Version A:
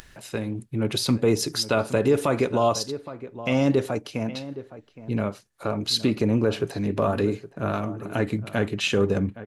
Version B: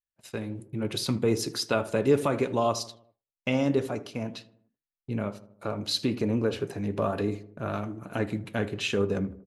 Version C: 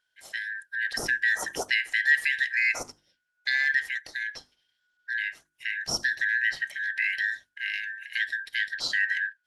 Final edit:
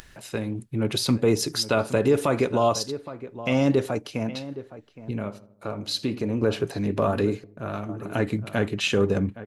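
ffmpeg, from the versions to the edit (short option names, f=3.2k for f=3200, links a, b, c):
-filter_complex "[1:a]asplit=2[a][b];[0:a]asplit=3[c][d][e];[c]atrim=end=5.112[f];[a]atrim=start=5.108:end=6.422[g];[d]atrim=start=6.418:end=7.442[h];[b]atrim=start=7.438:end=7.892[i];[e]atrim=start=7.888[j];[f][g]acrossfade=d=0.004:c1=hsin:c2=hsin[k];[k][h]acrossfade=d=0.004:c1=hsin:c2=hsin[l];[l][i]acrossfade=d=0.004:c1=hsin:c2=hsin[m];[m][j]acrossfade=d=0.004:c1=hsin:c2=hsin"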